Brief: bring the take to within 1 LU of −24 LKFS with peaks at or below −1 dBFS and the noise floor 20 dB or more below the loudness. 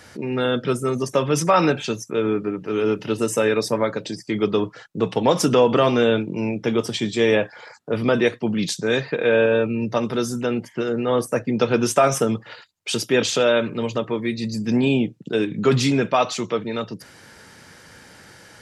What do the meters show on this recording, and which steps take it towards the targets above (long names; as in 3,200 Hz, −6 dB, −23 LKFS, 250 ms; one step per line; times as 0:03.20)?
integrated loudness −21.5 LKFS; sample peak −4.5 dBFS; target loudness −24.0 LKFS
→ level −2.5 dB